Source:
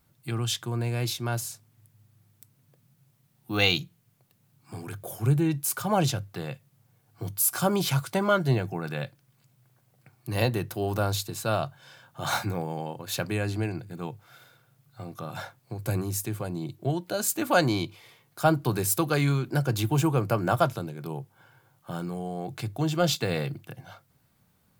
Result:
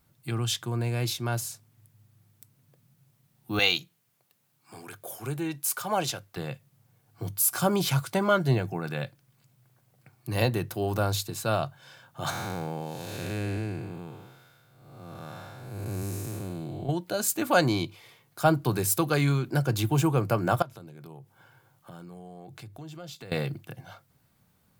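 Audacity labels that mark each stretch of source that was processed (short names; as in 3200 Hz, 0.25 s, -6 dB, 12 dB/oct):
3.590000	6.370000	HPF 540 Hz 6 dB/oct
12.300000	16.890000	time blur width 0.354 s
20.620000	23.320000	compressor 3:1, threshold -45 dBFS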